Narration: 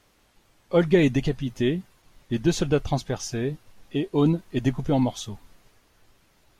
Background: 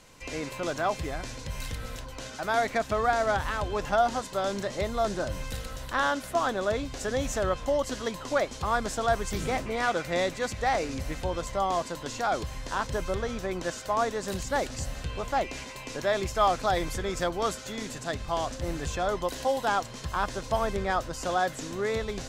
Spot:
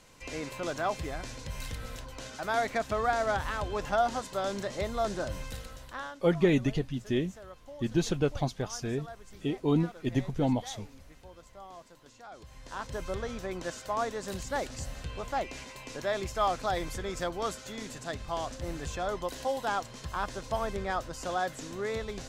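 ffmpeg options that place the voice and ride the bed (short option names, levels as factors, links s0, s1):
-filter_complex "[0:a]adelay=5500,volume=0.531[s0];[1:a]volume=4.47,afade=t=out:st=5.34:d=0.85:silence=0.133352,afade=t=in:st=12.34:d=0.8:silence=0.158489[s1];[s0][s1]amix=inputs=2:normalize=0"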